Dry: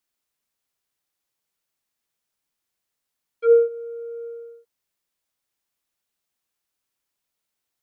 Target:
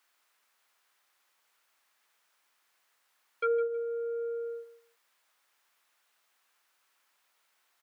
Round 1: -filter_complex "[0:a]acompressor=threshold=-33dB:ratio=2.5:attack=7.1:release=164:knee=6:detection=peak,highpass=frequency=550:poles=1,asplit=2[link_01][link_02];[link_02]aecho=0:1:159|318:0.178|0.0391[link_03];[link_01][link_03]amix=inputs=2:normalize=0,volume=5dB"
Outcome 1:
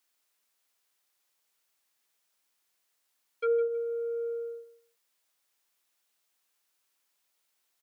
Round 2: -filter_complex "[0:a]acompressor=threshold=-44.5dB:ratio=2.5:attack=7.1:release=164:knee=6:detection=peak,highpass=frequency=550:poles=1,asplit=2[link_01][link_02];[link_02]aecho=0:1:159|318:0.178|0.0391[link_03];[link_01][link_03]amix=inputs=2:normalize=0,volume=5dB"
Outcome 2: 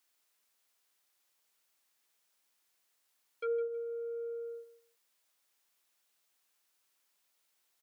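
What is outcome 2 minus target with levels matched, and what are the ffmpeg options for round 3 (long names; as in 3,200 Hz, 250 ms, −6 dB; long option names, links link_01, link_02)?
1,000 Hz band −6.0 dB
-filter_complex "[0:a]acompressor=threshold=-44.5dB:ratio=2.5:attack=7.1:release=164:knee=6:detection=peak,highpass=frequency=550:poles=1,equalizer=frequency=1300:width_type=o:width=2.6:gain=11.5,asplit=2[link_01][link_02];[link_02]aecho=0:1:159|318:0.178|0.0391[link_03];[link_01][link_03]amix=inputs=2:normalize=0,volume=5dB"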